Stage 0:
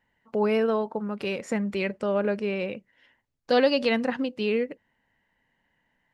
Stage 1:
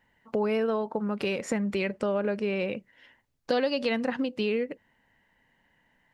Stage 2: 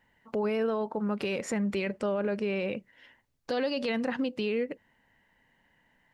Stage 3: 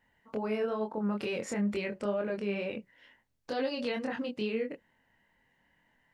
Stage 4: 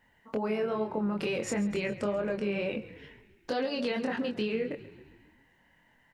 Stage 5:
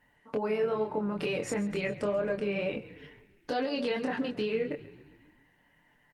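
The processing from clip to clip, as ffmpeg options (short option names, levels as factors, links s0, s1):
-af "acompressor=threshold=0.0282:ratio=3,volume=1.68"
-af "alimiter=limit=0.0794:level=0:latency=1:release=11"
-af "flanger=delay=22.5:depth=2.5:speed=2.2"
-filter_complex "[0:a]acompressor=threshold=0.0251:ratio=6,asplit=7[s0][s1][s2][s3][s4][s5][s6];[s1]adelay=135,afreqshift=-34,volume=0.158[s7];[s2]adelay=270,afreqshift=-68,volume=0.0955[s8];[s3]adelay=405,afreqshift=-102,volume=0.0569[s9];[s4]adelay=540,afreqshift=-136,volume=0.0343[s10];[s5]adelay=675,afreqshift=-170,volume=0.0207[s11];[s6]adelay=810,afreqshift=-204,volume=0.0123[s12];[s0][s7][s8][s9][s10][s11][s12]amix=inputs=7:normalize=0,volume=1.78"
-af "aecho=1:1:6.8:0.37" -ar 48000 -c:a libopus -b:a 32k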